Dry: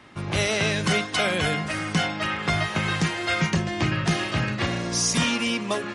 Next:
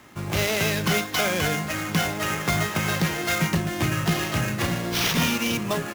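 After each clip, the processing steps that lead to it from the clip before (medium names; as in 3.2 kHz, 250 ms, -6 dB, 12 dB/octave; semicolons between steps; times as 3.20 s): sample-rate reducer 8.8 kHz, jitter 20%; echo from a far wall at 290 m, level -9 dB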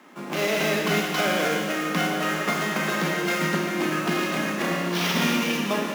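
steep high-pass 180 Hz 48 dB/octave; treble shelf 3.5 kHz -8.5 dB; Schroeder reverb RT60 2.1 s, combs from 25 ms, DRR 0 dB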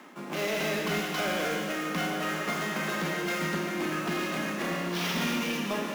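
reverse; upward compressor, threshold -29 dBFS; reverse; saturation -17.5 dBFS, distortion -18 dB; trim -4.5 dB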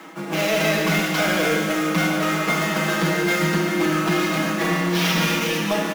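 comb 6.2 ms, depth 88%; trim +7 dB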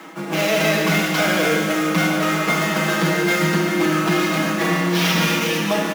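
high-pass 42 Hz; trim +2 dB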